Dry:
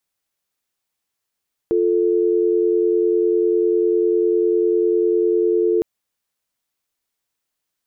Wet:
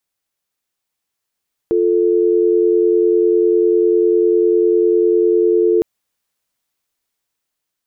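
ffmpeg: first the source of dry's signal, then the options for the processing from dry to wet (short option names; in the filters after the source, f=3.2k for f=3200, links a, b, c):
-f lavfi -i "aevalsrc='0.141*(sin(2*PI*350*t)+sin(2*PI*440*t))':d=4.11:s=44100"
-af "dynaudnorm=f=640:g=5:m=4dB"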